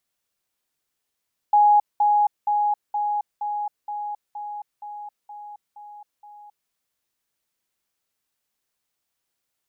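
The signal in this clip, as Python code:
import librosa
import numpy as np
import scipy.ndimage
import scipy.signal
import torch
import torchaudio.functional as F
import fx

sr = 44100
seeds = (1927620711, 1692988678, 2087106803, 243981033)

y = fx.level_ladder(sr, hz=831.0, from_db=-12.0, step_db=-3.0, steps=11, dwell_s=0.27, gap_s=0.2)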